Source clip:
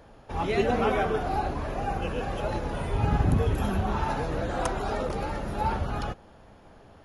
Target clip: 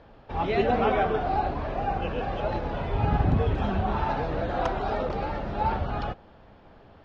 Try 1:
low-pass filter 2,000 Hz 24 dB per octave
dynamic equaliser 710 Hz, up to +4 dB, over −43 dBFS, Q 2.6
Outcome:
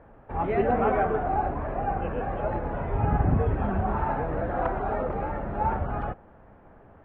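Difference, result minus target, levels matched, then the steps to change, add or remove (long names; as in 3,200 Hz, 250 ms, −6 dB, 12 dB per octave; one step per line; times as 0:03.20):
4,000 Hz band −16.0 dB
change: low-pass filter 4,500 Hz 24 dB per octave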